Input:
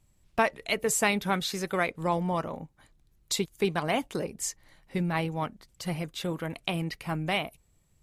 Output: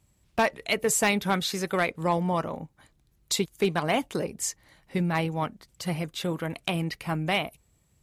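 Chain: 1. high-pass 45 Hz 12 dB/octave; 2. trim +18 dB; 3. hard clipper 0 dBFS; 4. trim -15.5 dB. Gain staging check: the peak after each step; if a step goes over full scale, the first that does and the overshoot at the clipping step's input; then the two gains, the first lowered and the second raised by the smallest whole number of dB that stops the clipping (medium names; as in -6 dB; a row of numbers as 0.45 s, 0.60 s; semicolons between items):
-10.5 dBFS, +7.5 dBFS, 0.0 dBFS, -15.5 dBFS; step 2, 7.5 dB; step 2 +10 dB, step 4 -7.5 dB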